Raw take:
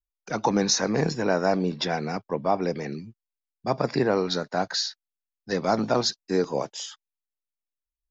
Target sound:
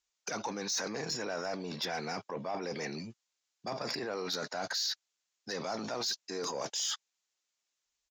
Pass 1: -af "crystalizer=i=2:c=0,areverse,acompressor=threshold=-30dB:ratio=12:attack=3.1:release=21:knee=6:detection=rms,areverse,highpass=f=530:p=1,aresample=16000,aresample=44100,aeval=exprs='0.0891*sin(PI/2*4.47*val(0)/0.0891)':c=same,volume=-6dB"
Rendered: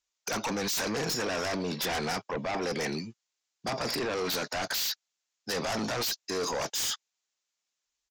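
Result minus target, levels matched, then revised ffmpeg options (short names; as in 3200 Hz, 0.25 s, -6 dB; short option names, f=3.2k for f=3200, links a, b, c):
compressor: peak gain reduction -10 dB
-af "crystalizer=i=2:c=0,areverse,acompressor=threshold=-41dB:ratio=12:attack=3.1:release=21:knee=6:detection=rms,areverse,highpass=f=530:p=1,aresample=16000,aresample=44100,aeval=exprs='0.0891*sin(PI/2*4.47*val(0)/0.0891)':c=same,volume=-6dB"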